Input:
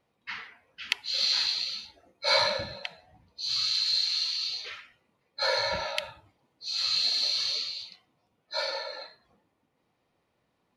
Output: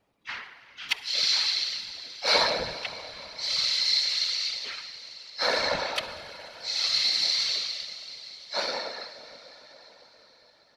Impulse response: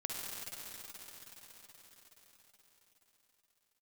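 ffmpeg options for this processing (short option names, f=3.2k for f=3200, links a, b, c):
-filter_complex "[0:a]asplit=2[a][b];[1:a]atrim=start_sample=2205,lowshelf=f=66:g=-7.5[c];[b][c]afir=irnorm=-1:irlink=0,volume=-10dB[d];[a][d]amix=inputs=2:normalize=0,asplit=3[e][f][g];[f]asetrate=22050,aresample=44100,atempo=2,volume=-15dB[h];[g]asetrate=55563,aresample=44100,atempo=0.793701,volume=-11dB[i];[e][h][i]amix=inputs=3:normalize=0,afftfilt=real='hypot(re,im)*cos(2*PI*random(0))':imag='hypot(re,im)*sin(2*PI*random(1))':win_size=512:overlap=0.75,volume=5.5dB"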